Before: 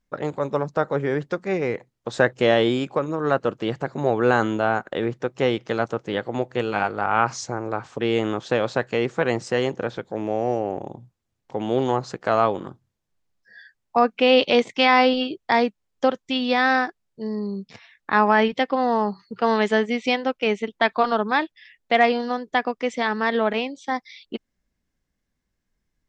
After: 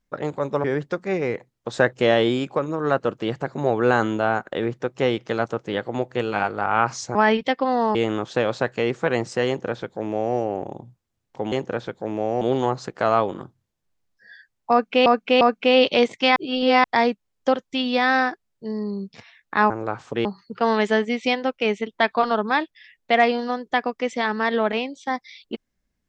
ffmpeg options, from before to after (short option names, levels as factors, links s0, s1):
-filter_complex "[0:a]asplit=12[s0][s1][s2][s3][s4][s5][s6][s7][s8][s9][s10][s11];[s0]atrim=end=0.642[s12];[s1]atrim=start=1.038:end=7.552[s13];[s2]atrim=start=18.258:end=19.062[s14];[s3]atrim=start=8.098:end=11.672[s15];[s4]atrim=start=9.618:end=10.512[s16];[s5]atrim=start=11.668:end=14.322[s17];[s6]atrim=start=13.968:end=14.322[s18];[s7]atrim=start=13.968:end=14.922[s19];[s8]atrim=start=14.918:end=15.402,asetpts=PTS-STARTPTS,areverse[s20];[s9]atrim=start=15.398:end=18.262[s21];[s10]atrim=start=7.548:end=8.102[s22];[s11]atrim=start=19.058[s23];[s12][s13]acrossfade=d=0.004:c1=hsin:c2=hsin[s24];[s24][s14]acrossfade=d=0.004:c1=hsin:c2=hsin[s25];[s25][s15]acrossfade=d=0.004:c1=hsin:c2=hsin[s26];[s26][s16]acrossfade=d=0.004:c1=hsin:c2=hsin[s27];[s27][s17]acrossfade=d=0.004:c1=hsin:c2=hsin[s28];[s28][s18]acrossfade=d=0.004:c1=hsin:c2=hsin[s29];[s29][s19]acrossfade=d=0.004:c1=hsin:c2=hsin[s30];[s30][s20]acrossfade=d=0.004:c1=hsin:c2=hsin[s31];[s31][s21]acrossfade=d=0.004:c1=hsin:c2=hsin[s32];[s32][s22]acrossfade=d=0.004:c1=hsin:c2=hsin[s33];[s33][s23]acrossfade=d=0.004:c1=hsin:c2=hsin"